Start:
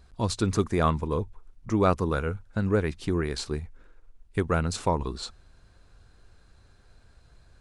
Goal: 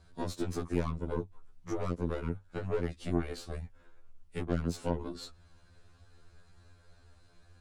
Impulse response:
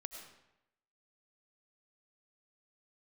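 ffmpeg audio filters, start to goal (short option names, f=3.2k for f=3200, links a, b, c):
-filter_complex "[0:a]aeval=exprs='0.355*(cos(1*acos(clip(val(0)/0.355,-1,1)))-cos(1*PI/2))+0.0398*(cos(8*acos(clip(val(0)/0.355,-1,1)))-cos(8*PI/2))':c=same,acrossover=split=190|570[a][b][c];[a]acompressor=threshold=-38dB:ratio=4[d];[b]acompressor=threshold=-29dB:ratio=4[e];[c]acompressor=threshold=-42dB:ratio=4[f];[d][e][f]amix=inputs=3:normalize=0,afftfilt=real='re*2*eq(mod(b,4),0)':imag='im*2*eq(mod(b,4),0)':win_size=2048:overlap=0.75"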